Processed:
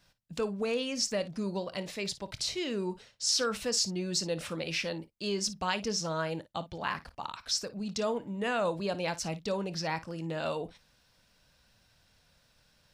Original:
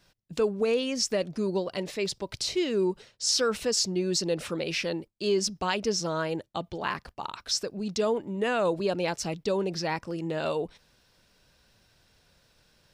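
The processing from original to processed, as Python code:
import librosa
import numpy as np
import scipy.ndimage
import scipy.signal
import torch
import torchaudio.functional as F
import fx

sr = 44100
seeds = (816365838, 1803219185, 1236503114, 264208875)

y = fx.peak_eq(x, sr, hz=380.0, db=-7.5, octaves=0.58)
y = fx.room_early_taps(y, sr, ms=(25, 55), db=(-17.0, -16.0))
y = F.gain(torch.from_numpy(y), -2.5).numpy()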